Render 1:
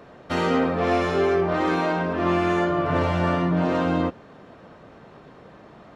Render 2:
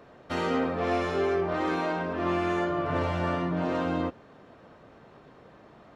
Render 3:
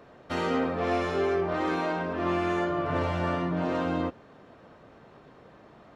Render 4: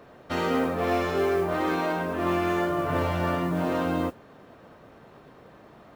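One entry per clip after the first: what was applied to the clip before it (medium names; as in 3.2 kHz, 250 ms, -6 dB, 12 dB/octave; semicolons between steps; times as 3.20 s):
peaking EQ 180 Hz -3 dB 0.36 oct; trim -5.5 dB
no audible change
modulation noise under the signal 28 dB; trim +2 dB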